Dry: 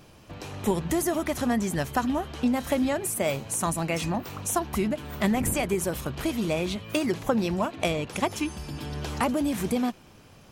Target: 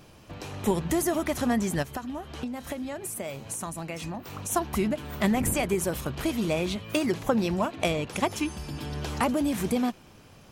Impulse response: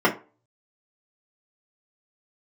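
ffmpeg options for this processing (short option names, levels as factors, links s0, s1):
-filter_complex "[0:a]asplit=3[s0][s1][s2];[s0]afade=t=out:st=1.82:d=0.02[s3];[s1]acompressor=threshold=0.0251:ratio=6,afade=t=in:st=1.82:d=0.02,afade=t=out:st=4.5:d=0.02[s4];[s2]afade=t=in:st=4.5:d=0.02[s5];[s3][s4][s5]amix=inputs=3:normalize=0"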